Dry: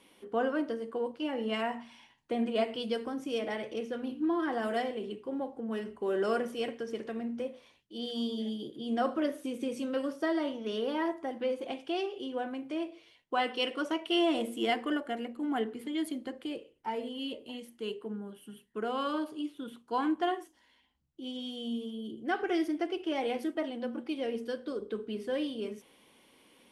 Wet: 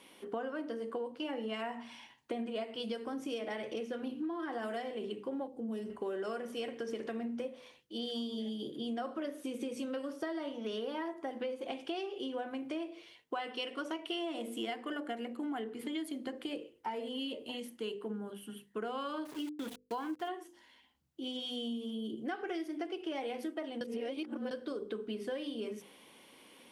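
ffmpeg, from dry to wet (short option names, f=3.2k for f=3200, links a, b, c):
-filter_complex "[0:a]asettb=1/sr,asplit=3[a][b][c];[a]atrim=end=5.474[d];[b]atrim=start=5.47:end=5.9,asetpts=PTS-STARTPTS,afade=t=in:d=0.004:c=qsin,afade=t=out:st=0.426:d=0.004:c=qsin,equalizer=f=1.5k:t=o:w=2.2:g=-14.5[e];[c]atrim=start=5.896[f];[d][e]acrossfade=d=0.004:c1=hsin:c2=qsin[g];[g][f]acrossfade=d=0.004:c1=qsin:c2=hsin,asettb=1/sr,asplit=3[h][i][j];[h]atrim=end=19.254[k];[i]atrim=start=19.25:end=20.29,asetpts=PTS-STARTPTS,afade=t=in:d=0.004:c=qsin,afade=t=out:st=1.036:d=0.004:c=qsin,aeval=exprs='val(0)*gte(abs(val(0)),0.00562)':c=same[l];[j]atrim=start=20.286[m];[k][l]acrossfade=d=0.004:c1=hsin:c2=qsin[n];[n][m]acrossfade=d=0.004:c1=qsin:c2=hsin,asplit=3[o][p][q];[o]atrim=end=23.812[r];[p]atrim=start=23.808:end=24.512,asetpts=PTS-STARTPTS,areverse[s];[q]atrim=start=24.508[t];[r][s]acrossfade=d=0.004:c1=hsin:c2=hsin[u];[u][t]acrossfade=d=0.004:c1=hsin:c2=hsin,highpass=f=120:p=1,bandreject=f=50:t=h:w=6,bandreject=f=100:t=h:w=6,bandreject=f=150:t=h:w=6,bandreject=f=200:t=h:w=6,bandreject=f=250:t=h:w=6,bandreject=f=300:t=h:w=6,bandreject=f=350:t=h:w=6,bandreject=f=400:t=h:w=6,bandreject=f=450:t=h:w=6,bandreject=f=500:t=h:w=6,acompressor=threshold=-39dB:ratio=10,volume=4dB"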